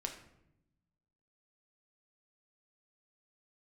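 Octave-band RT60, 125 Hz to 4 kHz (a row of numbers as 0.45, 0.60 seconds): 1.5, 1.4, 0.90, 0.70, 0.65, 0.50 seconds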